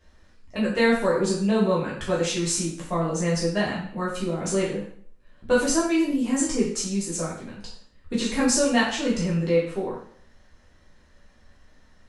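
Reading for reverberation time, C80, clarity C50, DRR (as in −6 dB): 0.55 s, 7.5 dB, 3.5 dB, −7.0 dB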